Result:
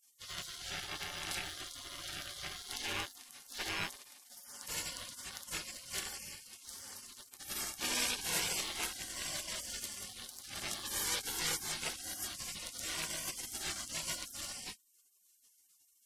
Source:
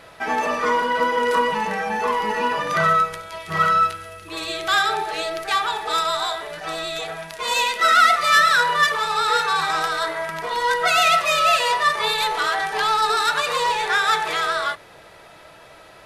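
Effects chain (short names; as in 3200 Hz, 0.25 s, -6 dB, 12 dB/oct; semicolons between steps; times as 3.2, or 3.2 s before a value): rattling part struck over -41 dBFS, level -22 dBFS; spectral gate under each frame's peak -30 dB weak; gain -1.5 dB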